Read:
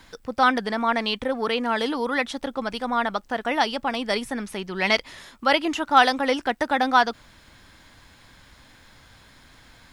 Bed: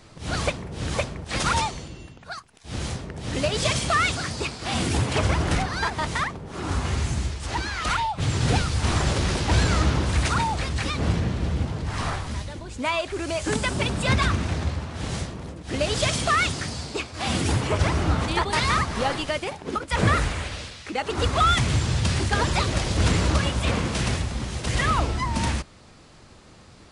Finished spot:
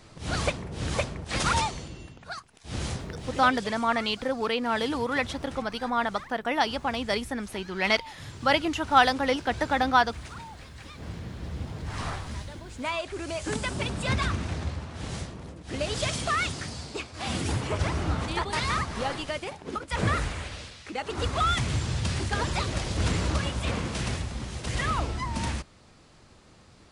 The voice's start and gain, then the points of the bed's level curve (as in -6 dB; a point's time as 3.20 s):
3.00 s, -3.0 dB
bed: 3.13 s -2 dB
3.68 s -18.5 dB
10.82 s -18.5 dB
11.92 s -5.5 dB